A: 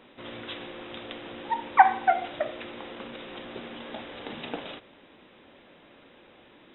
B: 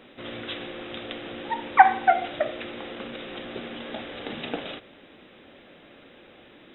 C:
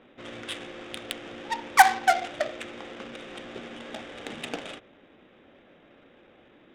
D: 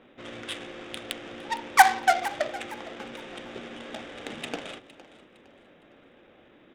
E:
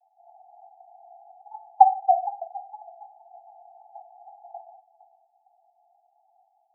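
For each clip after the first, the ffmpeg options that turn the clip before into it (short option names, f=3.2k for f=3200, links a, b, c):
-af "equalizer=f=970:w=4.5:g=-7,volume=4dB"
-af "adynamicsmooth=sensitivity=2.5:basefreq=1.3k,crystalizer=i=7:c=0,volume=-4.5dB"
-filter_complex "[0:a]asplit=4[a][b][c][d];[b]adelay=460,afreqshift=44,volume=-17.5dB[e];[c]adelay=920,afreqshift=88,volume=-26.9dB[f];[d]adelay=1380,afreqshift=132,volume=-36.2dB[g];[a][e][f][g]amix=inputs=4:normalize=0"
-af "asuperpass=centerf=760:order=20:qfactor=3.8,volume=3dB"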